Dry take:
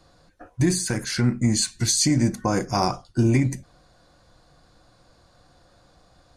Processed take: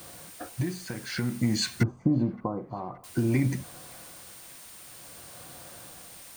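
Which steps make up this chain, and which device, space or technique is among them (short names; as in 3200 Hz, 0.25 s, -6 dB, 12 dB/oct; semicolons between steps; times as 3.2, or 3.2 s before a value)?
medium wave at night (BPF 100–3800 Hz; compressor, threshold -27 dBFS, peak gain reduction 11 dB; tremolo 0.54 Hz, depth 78%; whine 9000 Hz -59 dBFS; white noise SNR 18 dB); 1.83–3.04 elliptic low-pass 1200 Hz, stop band 40 dB; band-limited delay 0.572 s, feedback 64%, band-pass 1500 Hz, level -23.5 dB; gain +8 dB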